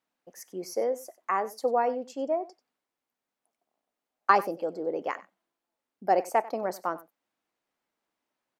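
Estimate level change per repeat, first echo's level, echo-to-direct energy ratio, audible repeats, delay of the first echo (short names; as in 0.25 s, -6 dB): no steady repeat, -19.0 dB, -19.0 dB, 1, 94 ms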